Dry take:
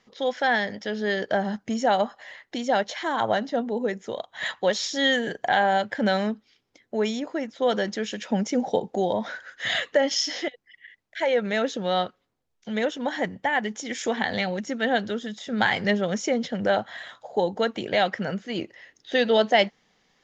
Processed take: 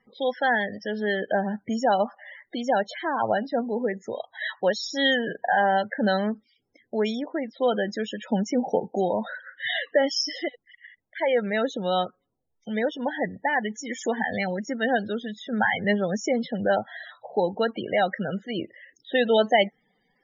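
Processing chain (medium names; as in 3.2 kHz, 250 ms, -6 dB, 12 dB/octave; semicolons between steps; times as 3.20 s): loudest bins only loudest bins 32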